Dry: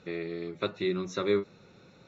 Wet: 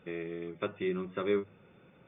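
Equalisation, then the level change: brick-wall FIR low-pass 3600 Hz; notches 50/100 Hz; -3.0 dB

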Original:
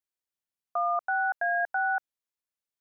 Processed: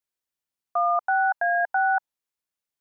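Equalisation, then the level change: dynamic EQ 900 Hz, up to +7 dB, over -45 dBFS, Q 2.5; +2.5 dB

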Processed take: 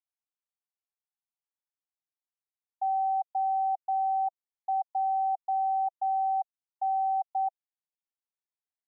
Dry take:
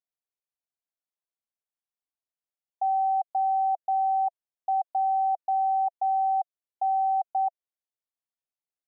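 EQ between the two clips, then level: elliptic high-pass 760 Hz; tilt -5.5 dB/oct; -4.5 dB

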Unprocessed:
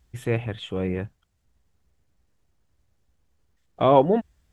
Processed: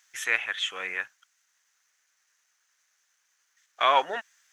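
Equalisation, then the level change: resonant high-pass 1600 Hz, resonance Q 2.1; bell 6200 Hz +12.5 dB 0.37 oct; +6.0 dB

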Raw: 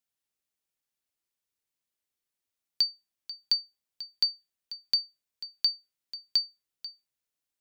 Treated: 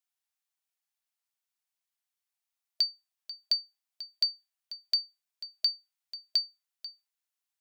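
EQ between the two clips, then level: brick-wall FIR high-pass 640 Hz; -1.5 dB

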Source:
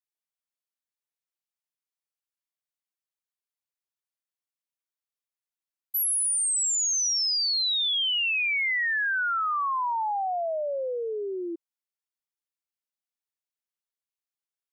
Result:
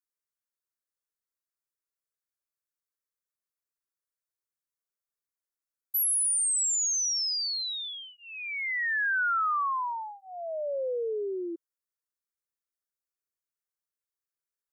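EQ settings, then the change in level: fixed phaser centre 780 Hz, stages 6; 0.0 dB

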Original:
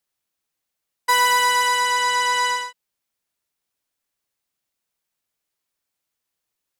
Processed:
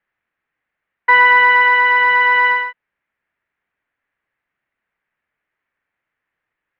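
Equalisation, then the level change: LPF 2400 Hz 24 dB/oct; bell 1800 Hz +10 dB 0.86 oct; dynamic EQ 1400 Hz, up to -3 dB, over -23 dBFS, Q 0.78; +5.5 dB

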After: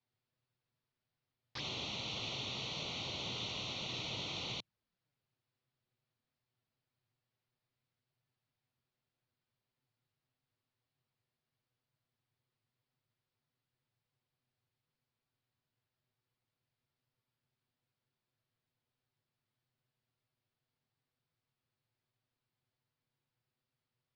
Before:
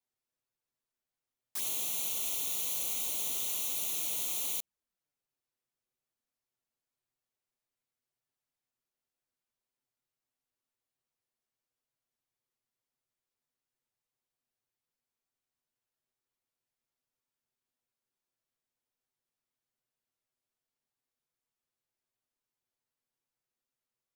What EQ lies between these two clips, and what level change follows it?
steep low-pass 5000 Hz 48 dB/oct; bell 120 Hz +14.5 dB 1.2 oct; +3.0 dB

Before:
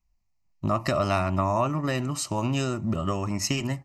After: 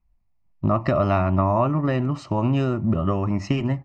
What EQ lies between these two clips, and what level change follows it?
tape spacing loss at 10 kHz 36 dB; +6.5 dB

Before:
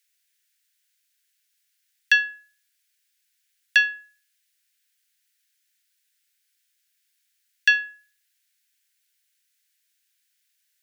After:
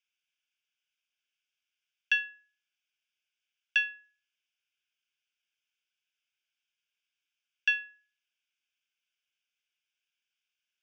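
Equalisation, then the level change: HPF 1500 Hz; air absorption 240 m; fixed phaser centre 2800 Hz, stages 8; 0.0 dB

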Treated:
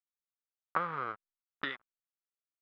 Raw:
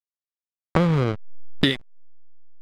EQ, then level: band-pass 1300 Hz, Q 3.7; air absorption 65 m; 0.0 dB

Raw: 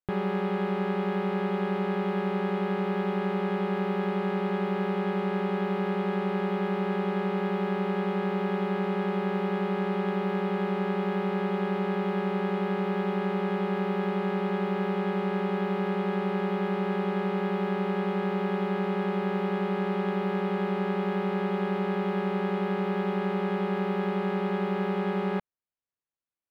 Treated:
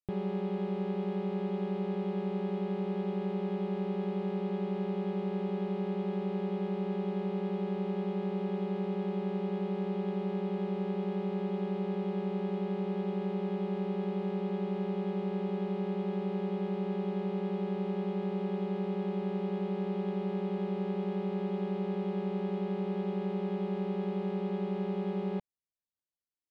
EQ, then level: air absorption 63 m; bell 1500 Hz -13.5 dB 1.5 oct; -3.5 dB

